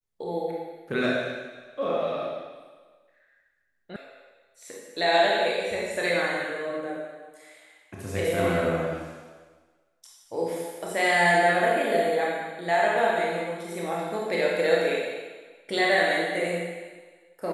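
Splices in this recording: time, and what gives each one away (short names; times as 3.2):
3.96 sound cut off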